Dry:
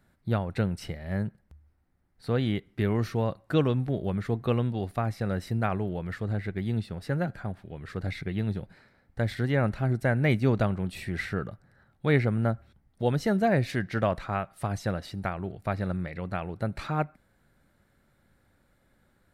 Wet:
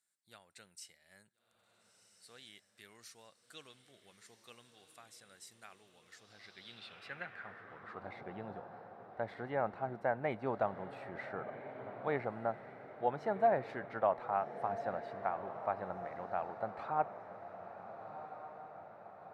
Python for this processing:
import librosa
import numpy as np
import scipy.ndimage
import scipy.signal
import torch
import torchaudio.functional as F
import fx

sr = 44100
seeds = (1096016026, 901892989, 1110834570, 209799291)

y = fx.echo_diffused(x, sr, ms=1398, feedback_pct=56, wet_db=-11.0)
y = fx.filter_sweep_bandpass(y, sr, from_hz=7800.0, to_hz=830.0, start_s=6.0, end_s=8.17, q=2.5)
y = F.gain(torch.from_numpy(y), 1.0).numpy()